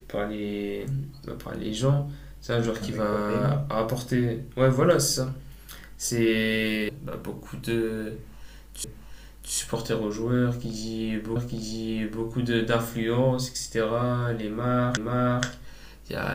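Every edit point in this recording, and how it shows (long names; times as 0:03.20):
0:06.89: cut off before it has died away
0:08.84: the same again, the last 0.69 s
0:11.36: the same again, the last 0.88 s
0:14.97: the same again, the last 0.48 s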